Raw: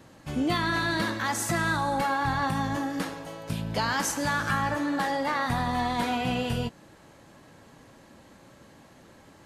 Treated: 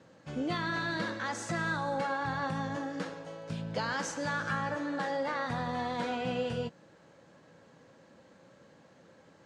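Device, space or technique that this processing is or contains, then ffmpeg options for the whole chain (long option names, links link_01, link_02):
car door speaker: -af "highpass=98,equalizer=frequency=170:width_type=q:width=4:gain=5,equalizer=frequency=510:width_type=q:width=4:gain=9,equalizer=frequency=1500:width_type=q:width=4:gain=4,lowpass=frequency=7500:width=0.5412,lowpass=frequency=7500:width=1.3066,volume=-8dB"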